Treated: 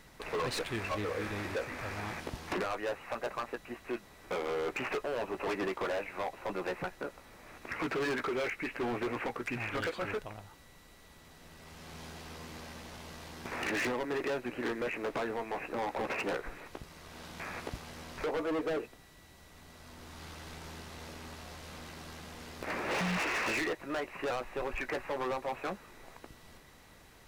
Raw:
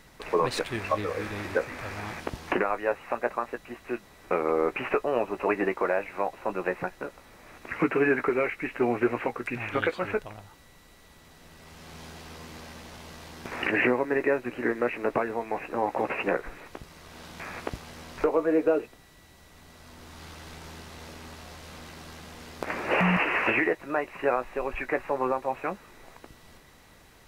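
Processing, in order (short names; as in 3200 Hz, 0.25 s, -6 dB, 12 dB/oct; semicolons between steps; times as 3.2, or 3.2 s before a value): hard clip -28 dBFS, distortion -5 dB; gain -2.5 dB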